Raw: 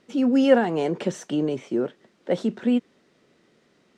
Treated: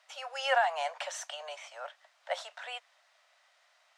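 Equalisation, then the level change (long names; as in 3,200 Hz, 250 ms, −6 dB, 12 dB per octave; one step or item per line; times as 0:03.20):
Butterworth high-pass 620 Hz 72 dB per octave
0.0 dB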